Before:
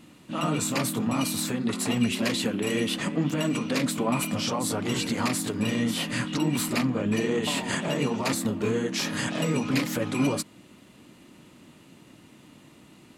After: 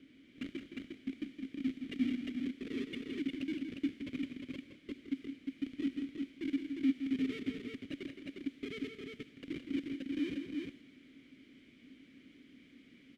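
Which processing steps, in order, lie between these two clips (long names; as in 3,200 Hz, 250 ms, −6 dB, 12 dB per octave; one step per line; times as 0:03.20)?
three sine waves on the formant tracks
high-shelf EQ 2,400 Hz +9 dB
mains-hum notches 50/100/150/200/250 Hz
comparator with hysteresis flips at −19.5 dBFS
background noise pink −47 dBFS
formant filter i
multi-tap delay 167/196/355 ms −7.5/−15/−3.5 dB
on a send at −18 dB: convolution reverb RT60 0.50 s, pre-delay 63 ms
on the sum: one half of a high-frequency compander decoder only
level +1.5 dB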